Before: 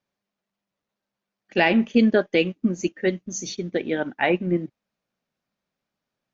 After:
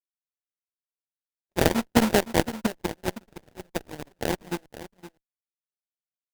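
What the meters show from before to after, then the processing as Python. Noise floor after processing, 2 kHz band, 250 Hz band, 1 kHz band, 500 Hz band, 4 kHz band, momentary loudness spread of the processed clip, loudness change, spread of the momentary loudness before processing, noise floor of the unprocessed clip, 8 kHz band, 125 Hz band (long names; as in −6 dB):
below −85 dBFS, −6.5 dB, −5.5 dB, −1.0 dB, −5.0 dB, −1.5 dB, 23 LU, −4.0 dB, 11 LU, below −85 dBFS, can't be measured, −1.5 dB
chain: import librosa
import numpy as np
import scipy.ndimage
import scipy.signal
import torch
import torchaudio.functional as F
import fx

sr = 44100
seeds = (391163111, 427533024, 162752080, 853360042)

p1 = fx.wow_flutter(x, sr, seeds[0], rate_hz=2.1, depth_cents=27.0)
p2 = fx.sample_hold(p1, sr, seeds[1], rate_hz=1200.0, jitter_pct=20)
p3 = fx.cheby_harmonics(p2, sr, harmonics=(3, 7, 8), levels_db=(-10, -45, -36), full_scale_db=-8.0)
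p4 = p3 + fx.echo_single(p3, sr, ms=515, db=-14.0, dry=0)
y = p4 * 10.0 ** (1.5 / 20.0)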